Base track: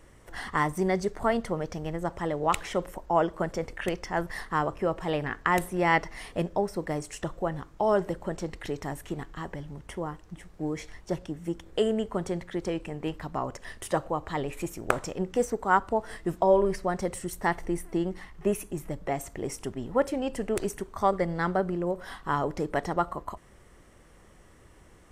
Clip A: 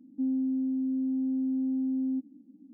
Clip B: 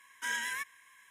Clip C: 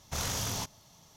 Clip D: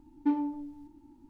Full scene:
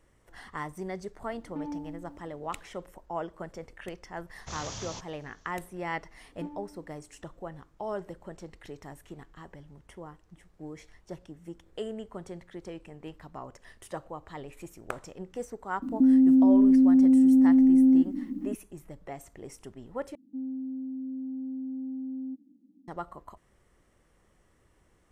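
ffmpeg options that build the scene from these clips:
-filter_complex "[4:a]asplit=2[s0][s1];[1:a]asplit=2[s2][s3];[0:a]volume=0.299[s4];[s0]alimiter=level_in=1.78:limit=0.0631:level=0:latency=1:release=108,volume=0.562[s5];[3:a]aresample=16000,aresample=44100[s6];[s2]alimiter=level_in=44.7:limit=0.891:release=50:level=0:latency=1[s7];[s4]asplit=2[s8][s9];[s8]atrim=end=20.154[s10];[s3]atrim=end=2.73,asetpts=PTS-STARTPTS,volume=0.473[s11];[s9]atrim=start=22.876[s12];[s5]atrim=end=1.29,asetpts=PTS-STARTPTS,volume=0.841,afade=t=in:d=0.004:c=hsin,afade=t=out:st=1.286:d=0.004:c=hsin,adelay=1300[s13];[s6]atrim=end=1.16,asetpts=PTS-STARTPTS,volume=0.501,afade=t=in:d=0.004:c=hsin,afade=t=out:st=1.156:d=0.004:c=hsin,adelay=4350[s14];[s1]atrim=end=1.29,asetpts=PTS-STARTPTS,volume=0.224,afade=t=in:d=0.004:c=hsin,afade=t=out:st=1.286:d=0.004:c=hsin,adelay=6150[s15];[s7]atrim=end=2.73,asetpts=PTS-STARTPTS,volume=0.2,afade=t=in:d=0.004:c=hsin,afade=t=out:st=2.726:d=0.004:c=hsin,adelay=15820[s16];[s10][s11]acrossfade=d=0.004:c1=hsin:c2=hsin[s17];[s17][s12]acrossfade=d=0.004:c1=hsin:c2=hsin[s18];[s18][s13][s14][s15][s16]amix=inputs=5:normalize=0"

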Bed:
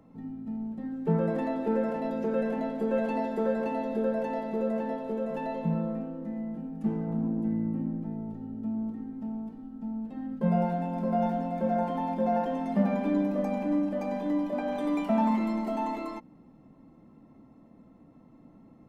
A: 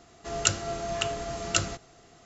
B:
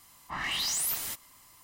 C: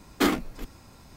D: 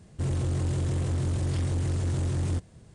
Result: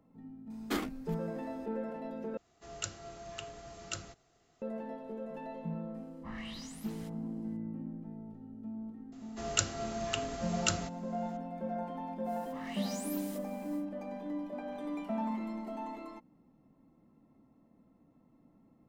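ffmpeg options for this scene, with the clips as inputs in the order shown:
-filter_complex "[1:a]asplit=2[s0][s1];[2:a]asplit=2[s2][s3];[0:a]volume=0.316[s4];[s2]aemphasis=mode=reproduction:type=bsi[s5];[s3]aeval=exprs='val(0)+0.5*0.00708*sgn(val(0))':c=same[s6];[s4]asplit=2[s7][s8];[s7]atrim=end=2.374[s9];[s0]atrim=end=2.25,asetpts=PTS-STARTPTS,volume=0.188[s10];[s8]atrim=start=4.616[s11];[3:a]atrim=end=1.16,asetpts=PTS-STARTPTS,volume=0.266,afade=t=in:d=0.004:c=hsin,afade=t=out:st=1.156:d=0.004:c=hsin,adelay=500[s12];[s5]atrim=end=1.63,asetpts=PTS-STARTPTS,volume=0.211,afade=t=in:d=0.004:c=hsin,afade=t=out:st=1.626:d=0.004:c=hsin,adelay=5940[s13];[s1]atrim=end=2.25,asetpts=PTS-STARTPTS,volume=0.531,afade=t=in:d=0.004:c=hsin,afade=t=out:st=2.246:d=0.004:c=hsin,adelay=9120[s14];[s6]atrim=end=1.63,asetpts=PTS-STARTPTS,volume=0.158,afade=t=in:d=0.1,afade=t=out:st=1.53:d=0.1,adelay=12230[s15];[s9][s10]acrossfade=d=0.004:c1=hsin:c2=hsin[s16];[s16][s11]acrossfade=d=0.004:c1=hsin:c2=hsin[s17];[s17][s12][s13][s14][s15]amix=inputs=5:normalize=0"

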